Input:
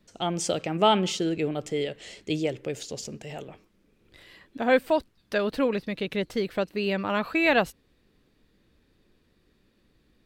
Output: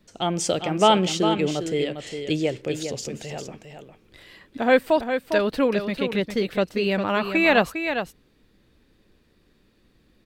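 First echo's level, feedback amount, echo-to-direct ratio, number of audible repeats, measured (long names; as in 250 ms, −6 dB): −8.0 dB, repeats not evenly spaced, −8.0 dB, 1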